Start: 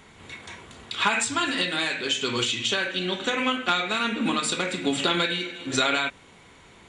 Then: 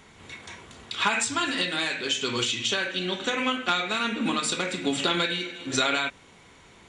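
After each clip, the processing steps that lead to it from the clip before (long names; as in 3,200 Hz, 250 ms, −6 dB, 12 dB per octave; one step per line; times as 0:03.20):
parametric band 5,700 Hz +3.5 dB 0.47 octaves
level −1.5 dB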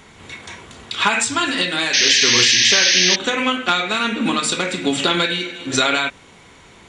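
sound drawn into the spectrogram noise, 0:01.93–0:03.16, 1,600–6,500 Hz −22 dBFS
level +7 dB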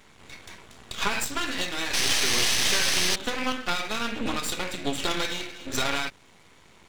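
half-wave rectification
level −5.5 dB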